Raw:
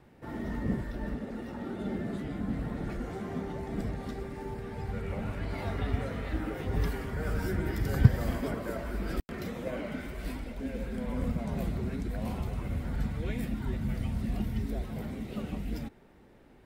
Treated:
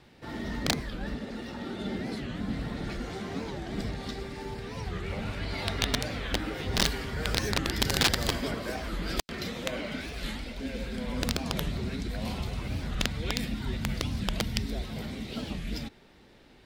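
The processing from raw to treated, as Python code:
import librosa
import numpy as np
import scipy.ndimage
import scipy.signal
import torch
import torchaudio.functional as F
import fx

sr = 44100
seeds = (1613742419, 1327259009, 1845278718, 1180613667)

y = (np.mod(10.0 ** (22.0 / 20.0) * x + 1.0, 2.0) - 1.0) / 10.0 ** (22.0 / 20.0)
y = fx.peak_eq(y, sr, hz=4200.0, db=14.0, octaves=1.7)
y = fx.record_warp(y, sr, rpm=45.0, depth_cents=250.0)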